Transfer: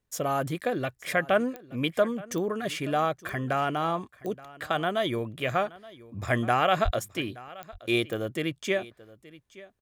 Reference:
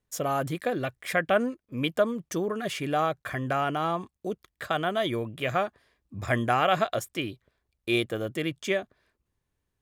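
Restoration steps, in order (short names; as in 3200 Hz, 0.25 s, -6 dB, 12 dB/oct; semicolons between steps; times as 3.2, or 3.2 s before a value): de-click; 6.84–6.96 HPF 140 Hz 24 dB/oct; inverse comb 0.874 s -20 dB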